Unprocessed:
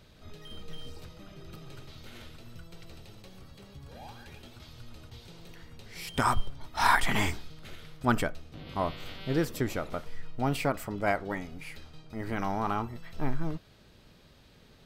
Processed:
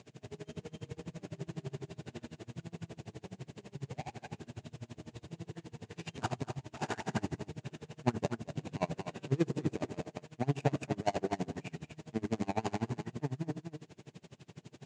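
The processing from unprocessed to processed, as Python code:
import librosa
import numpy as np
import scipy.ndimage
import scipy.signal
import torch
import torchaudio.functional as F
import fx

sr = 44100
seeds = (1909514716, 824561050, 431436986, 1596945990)

p1 = scipy.signal.medfilt(x, 41)
p2 = fx.dynamic_eq(p1, sr, hz=2800.0, q=0.95, threshold_db=-57.0, ratio=4.0, max_db=-6)
p3 = fx.over_compress(p2, sr, threshold_db=-40.0, ratio=-1.0)
p4 = p2 + (p3 * librosa.db_to_amplitude(1.0))
p5 = fx.quant_dither(p4, sr, seeds[0], bits=10, dither='none')
p6 = fx.cabinet(p5, sr, low_hz=130.0, low_slope=24, high_hz=7600.0, hz=(190.0, 280.0, 530.0, 1300.0, 2800.0, 7000.0), db=(-6, -7, -8, -7, 3, 6))
p7 = p6 + 10.0 ** (-7.5 / 20.0) * np.pad(p6, (int(228 * sr / 1000.0), 0))[:len(p6)]
p8 = fx.room_shoebox(p7, sr, seeds[1], volume_m3=310.0, walls='furnished', distance_m=0.42)
p9 = p8 * 10.0 ** (-29 * (0.5 - 0.5 * np.cos(2.0 * np.pi * 12.0 * np.arange(len(p8)) / sr)) / 20.0)
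y = p9 * librosa.db_to_amplitude(6.0)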